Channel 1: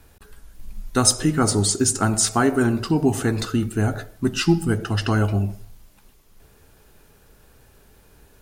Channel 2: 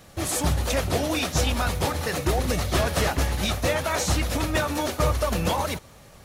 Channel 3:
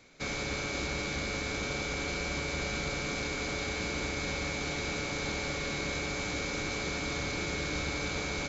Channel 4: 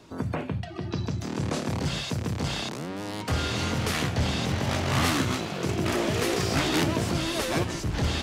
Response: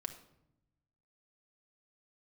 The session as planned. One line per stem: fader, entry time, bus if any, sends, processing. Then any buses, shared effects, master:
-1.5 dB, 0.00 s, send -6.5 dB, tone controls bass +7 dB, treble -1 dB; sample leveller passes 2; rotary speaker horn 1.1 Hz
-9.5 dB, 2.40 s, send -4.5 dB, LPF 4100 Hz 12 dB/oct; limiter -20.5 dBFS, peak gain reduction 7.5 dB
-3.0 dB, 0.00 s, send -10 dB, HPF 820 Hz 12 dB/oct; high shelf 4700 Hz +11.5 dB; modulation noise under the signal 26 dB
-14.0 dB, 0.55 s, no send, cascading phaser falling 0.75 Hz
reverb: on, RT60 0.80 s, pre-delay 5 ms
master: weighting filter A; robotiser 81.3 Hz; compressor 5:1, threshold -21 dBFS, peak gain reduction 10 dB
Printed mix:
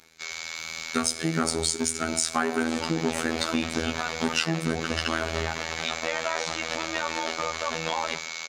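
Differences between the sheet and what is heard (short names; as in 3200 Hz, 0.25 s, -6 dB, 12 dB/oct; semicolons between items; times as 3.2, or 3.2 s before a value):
stem 2 -9.5 dB -> +2.0 dB; stem 4: muted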